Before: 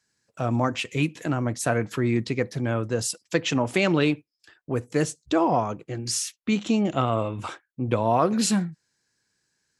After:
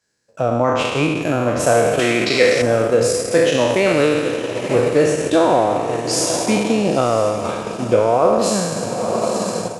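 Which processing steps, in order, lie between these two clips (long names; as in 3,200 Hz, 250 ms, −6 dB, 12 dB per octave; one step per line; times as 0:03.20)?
peak hold with a decay on every bin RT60 1.76 s
parametric band 530 Hz +10 dB 0.87 octaves
on a send: feedback delay with all-pass diffusion 933 ms, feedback 60%, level −11.5 dB
on the sum: automatic gain control gain up to 8 dB
transient designer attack +3 dB, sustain −6 dB
0:01.99–0:02.62: meter weighting curve D
in parallel at −1 dB: brickwall limiter −7 dBFS, peak gain reduction 9.5 dB
on the sum: level −6.5 dB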